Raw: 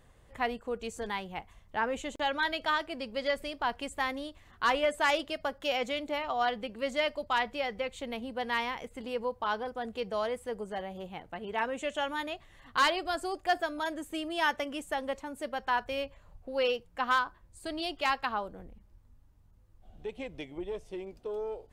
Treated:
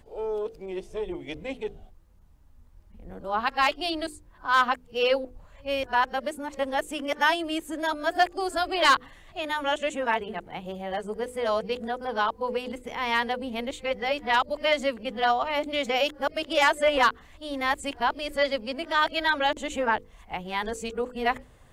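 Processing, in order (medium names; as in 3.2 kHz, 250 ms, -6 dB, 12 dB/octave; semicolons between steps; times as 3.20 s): reverse the whole clip; hum notches 50/100/150/200/250/300/350/400/450/500 Hz; trim +6 dB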